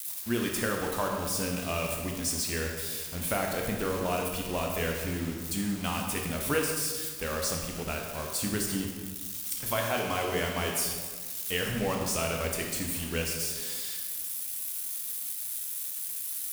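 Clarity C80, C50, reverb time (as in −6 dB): 4.5 dB, 3.0 dB, 1.6 s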